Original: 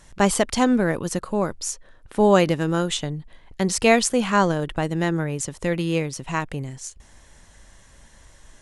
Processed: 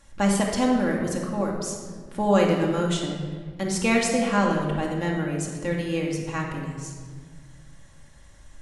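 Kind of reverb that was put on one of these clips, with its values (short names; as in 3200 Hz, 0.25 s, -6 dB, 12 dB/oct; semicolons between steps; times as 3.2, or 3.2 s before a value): shoebox room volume 1900 m³, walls mixed, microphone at 2.3 m; gain -7 dB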